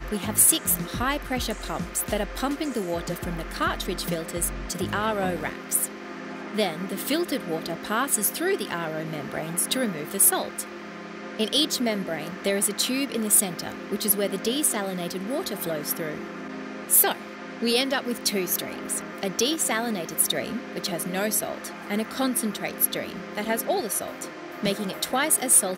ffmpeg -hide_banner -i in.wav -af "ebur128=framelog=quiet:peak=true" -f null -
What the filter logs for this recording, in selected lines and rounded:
Integrated loudness:
  I:         -25.0 LUFS
  Threshold: -35.2 LUFS
Loudness range:
  LRA:         3.9 LU
  Threshold: -45.7 LUFS
  LRA low:   -27.8 LUFS
  LRA high:  -23.9 LUFS
True peak:
  Peak:       -7.2 dBFS